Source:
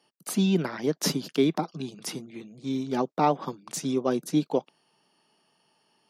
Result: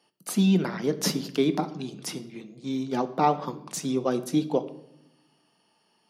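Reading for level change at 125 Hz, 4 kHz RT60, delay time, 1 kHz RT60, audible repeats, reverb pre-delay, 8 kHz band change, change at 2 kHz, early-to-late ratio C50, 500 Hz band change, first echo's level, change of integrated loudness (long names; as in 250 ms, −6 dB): +1.5 dB, 0.65 s, no echo audible, 0.70 s, no echo audible, 4 ms, +0.5 dB, +0.5 dB, 15.0 dB, 0.0 dB, no echo audible, +1.0 dB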